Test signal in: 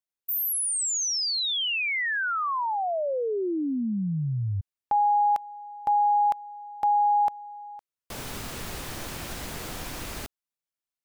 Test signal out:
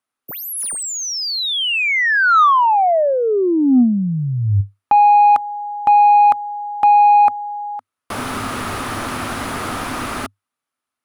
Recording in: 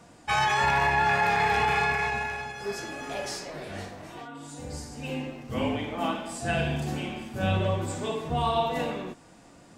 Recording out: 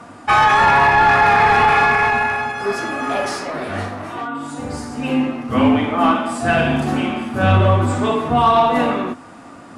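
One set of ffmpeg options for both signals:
ffmpeg -i in.wav -filter_complex "[0:a]equalizer=frequency=100:width_type=o:width=0.33:gain=11,equalizer=frequency=250:width_type=o:width=0.33:gain=10,equalizer=frequency=500:width_type=o:width=0.33:gain=-3,equalizer=frequency=1250:width_type=o:width=0.33:gain=8,equalizer=frequency=10000:width_type=o:width=0.33:gain=11,asplit=2[link_01][link_02];[link_02]highpass=frequency=720:poles=1,volume=16dB,asoftclip=type=tanh:threshold=-8.5dB[link_03];[link_01][link_03]amix=inputs=2:normalize=0,lowpass=frequency=1200:poles=1,volume=-6dB,volume=7dB" out.wav

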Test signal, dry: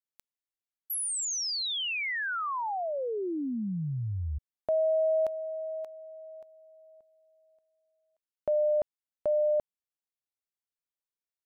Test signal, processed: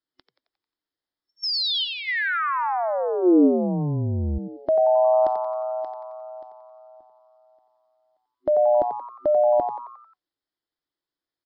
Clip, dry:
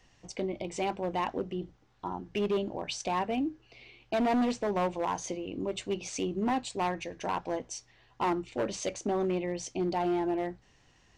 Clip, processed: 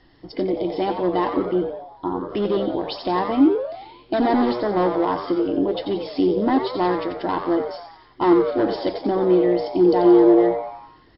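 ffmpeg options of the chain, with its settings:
ffmpeg -i in.wav -filter_complex "[0:a]superequalizer=6b=3.16:12b=0.316,asplit=7[link_01][link_02][link_03][link_04][link_05][link_06][link_07];[link_02]adelay=89,afreqshift=120,volume=-8dB[link_08];[link_03]adelay=178,afreqshift=240,volume=-14dB[link_09];[link_04]adelay=267,afreqshift=360,volume=-20dB[link_10];[link_05]adelay=356,afreqshift=480,volume=-26.1dB[link_11];[link_06]adelay=445,afreqshift=600,volume=-32.1dB[link_12];[link_07]adelay=534,afreqshift=720,volume=-38.1dB[link_13];[link_01][link_08][link_09][link_10][link_11][link_12][link_13]amix=inputs=7:normalize=0,volume=7.5dB" -ar 12000 -c:a libmp3lame -b:a 32k out.mp3

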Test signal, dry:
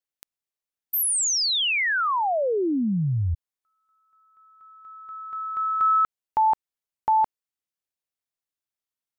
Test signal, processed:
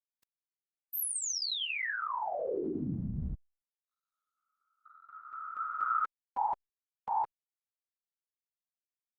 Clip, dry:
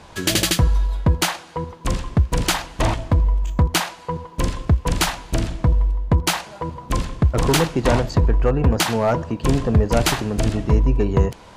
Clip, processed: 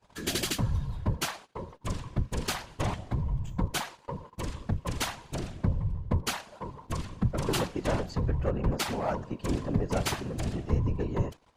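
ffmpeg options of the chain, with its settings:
ffmpeg -i in.wav -af "afftfilt=real='hypot(re,im)*cos(2*PI*random(0))':imag='hypot(re,im)*sin(2*PI*random(1))':win_size=512:overlap=0.75,agate=range=-19dB:threshold=-46dB:ratio=3:release=45:detection=rms,volume=-5.5dB" -ar 48000 -c:a libopus -b:a 256k out.opus

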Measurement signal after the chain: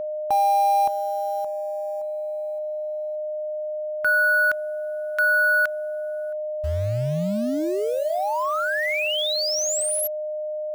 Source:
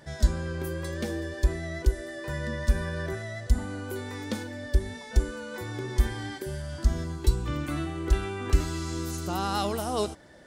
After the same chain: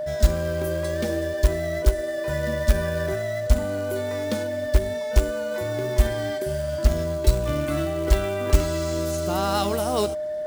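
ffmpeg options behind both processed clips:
ffmpeg -i in.wav -af "acrusher=bits=4:mode=log:mix=0:aa=0.000001,aeval=exprs='val(0)+0.0316*sin(2*PI*610*n/s)':channel_layout=same,volume=4dB" out.wav

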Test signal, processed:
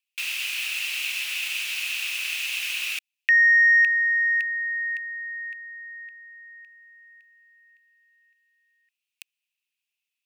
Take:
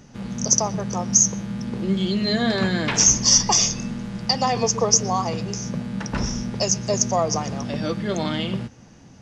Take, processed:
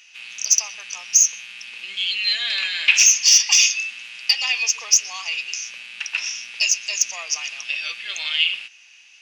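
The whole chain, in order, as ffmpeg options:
ffmpeg -i in.wav -af "acontrast=55,highpass=frequency=2600:width_type=q:width=8.3,volume=-4dB" out.wav

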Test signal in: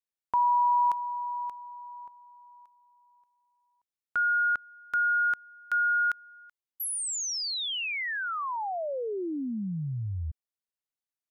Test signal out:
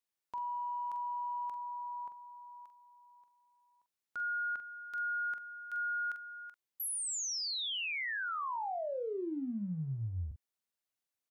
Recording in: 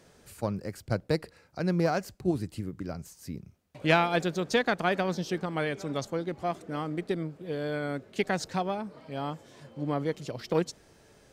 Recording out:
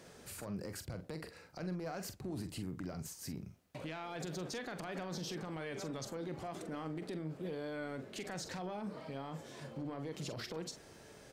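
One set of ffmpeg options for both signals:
ffmpeg -i in.wav -filter_complex "[0:a]lowshelf=frequency=65:gain=-8.5,acompressor=threshold=-34dB:ratio=6:attack=0.32:release=52:knee=6:detection=peak,alimiter=level_in=12.5dB:limit=-24dB:level=0:latency=1:release=26,volume=-12.5dB,asplit=2[link_01][link_02];[link_02]adelay=44,volume=-9.5dB[link_03];[link_01][link_03]amix=inputs=2:normalize=0,volume=2dB" out.wav

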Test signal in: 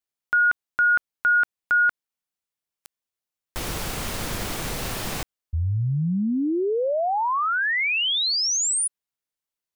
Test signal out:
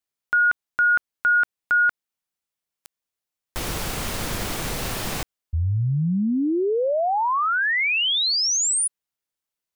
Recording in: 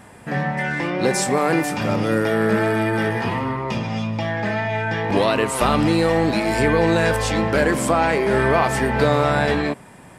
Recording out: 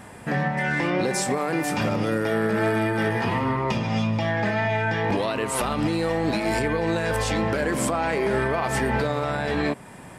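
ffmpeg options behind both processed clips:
ffmpeg -i in.wav -af "alimiter=limit=-16dB:level=0:latency=1:release=216,volume=1.5dB" out.wav

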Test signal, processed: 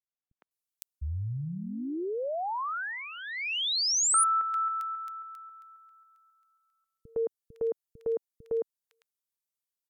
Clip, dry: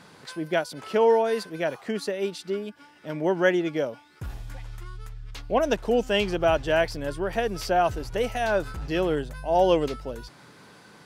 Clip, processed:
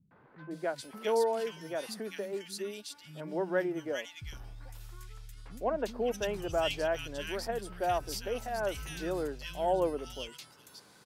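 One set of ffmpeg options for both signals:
ffmpeg -i in.wav -filter_complex "[0:a]aemphasis=mode=production:type=cd,acrossover=split=200|1900[link_01][link_02][link_03];[link_02]adelay=110[link_04];[link_03]adelay=510[link_05];[link_01][link_04][link_05]amix=inputs=3:normalize=0,volume=-8dB" out.wav

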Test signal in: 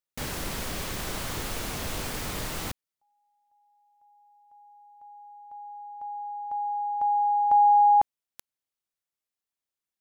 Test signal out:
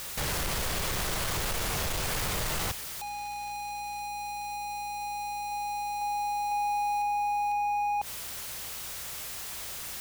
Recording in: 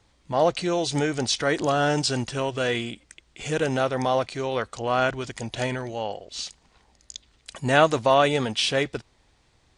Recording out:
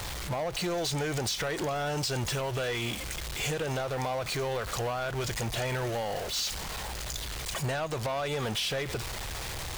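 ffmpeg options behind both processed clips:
ffmpeg -i in.wav -af "aeval=exprs='val(0)+0.5*0.0299*sgn(val(0))':channel_layout=same,equalizer=frequency=260:width_type=o:width=0.61:gain=-10,acompressor=threshold=-26dB:ratio=6:attack=3.5:release=174:knee=1:detection=peak,asoftclip=type=hard:threshold=-27dB,aeval=exprs='val(0)+0.00158*(sin(2*PI*60*n/s)+sin(2*PI*2*60*n/s)/2+sin(2*PI*3*60*n/s)/3+sin(2*PI*4*60*n/s)/4+sin(2*PI*5*60*n/s)/5)':channel_layout=same" out.wav

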